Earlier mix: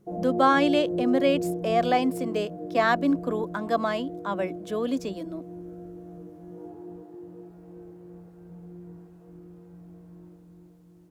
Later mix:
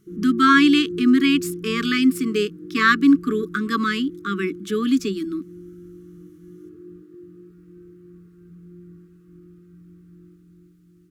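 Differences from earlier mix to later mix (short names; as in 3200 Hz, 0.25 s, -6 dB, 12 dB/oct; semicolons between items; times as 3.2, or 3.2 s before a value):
speech +9.5 dB; master: add brick-wall FIR band-stop 440–1100 Hz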